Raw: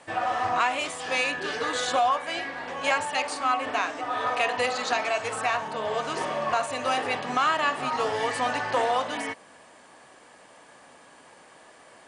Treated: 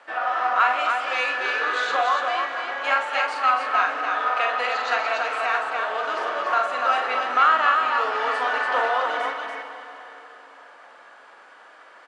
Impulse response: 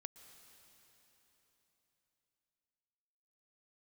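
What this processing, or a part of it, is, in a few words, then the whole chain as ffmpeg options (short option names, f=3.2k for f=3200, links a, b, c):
station announcement: -filter_complex "[0:a]highpass=460,lowpass=4k,equalizer=f=1.4k:t=o:w=0.4:g=10.5,aecho=1:1:43.73|288.6:0.501|0.631[a];[1:a]atrim=start_sample=2205[b];[a][b]afir=irnorm=-1:irlink=0,volume=5dB"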